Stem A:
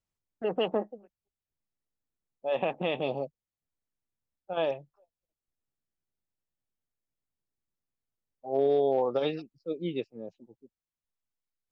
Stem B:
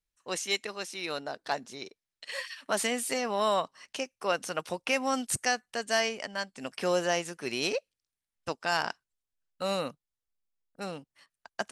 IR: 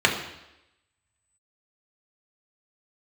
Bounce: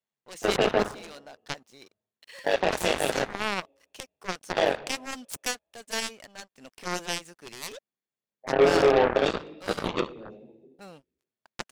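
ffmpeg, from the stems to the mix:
-filter_complex "[0:a]highpass=f=160:w=0.5412,highpass=f=160:w=1.3066,bandreject=f=3k:w=12,tremolo=f=100:d=0.71,volume=-1.5dB,asplit=2[a][b];[b]volume=-6dB[c];[1:a]aeval=exprs='sgn(val(0))*max(abs(val(0))-0.00316,0)':c=same,volume=0.5dB[d];[2:a]atrim=start_sample=2205[e];[c][e]afir=irnorm=-1:irlink=0[f];[a][d][f]amix=inputs=3:normalize=0,acontrast=46,aeval=exprs='0.794*(cos(1*acos(clip(val(0)/0.794,-1,1)))-cos(1*PI/2))+0.141*(cos(7*acos(clip(val(0)/0.794,-1,1)))-cos(7*PI/2))':c=same,alimiter=limit=-11.5dB:level=0:latency=1:release=99"

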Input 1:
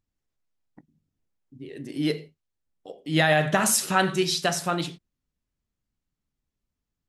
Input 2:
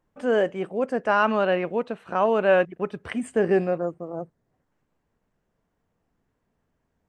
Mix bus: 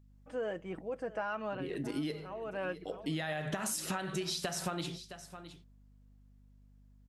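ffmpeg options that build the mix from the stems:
-filter_complex "[0:a]acompressor=threshold=-26dB:ratio=6,aeval=exprs='val(0)+0.000891*(sin(2*PI*50*n/s)+sin(2*PI*2*50*n/s)/2+sin(2*PI*3*50*n/s)/3+sin(2*PI*4*50*n/s)/4+sin(2*PI*5*50*n/s)/5)':c=same,volume=1.5dB,asplit=3[a][b][c];[b]volume=-20dB[d];[1:a]aecho=1:1:6.2:0.5,adelay=100,volume=-11.5dB,asplit=2[e][f];[f]volume=-20.5dB[g];[c]apad=whole_len=316961[h];[e][h]sidechaincompress=threshold=-44dB:ratio=8:attack=7.2:release=451[i];[d][g]amix=inputs=2:normalize=0,aecho=0:1:664:1[j];[a][i][j]amix=inputs=3:normalize=0,acompressor=threshold=-33dB:ratio=6"

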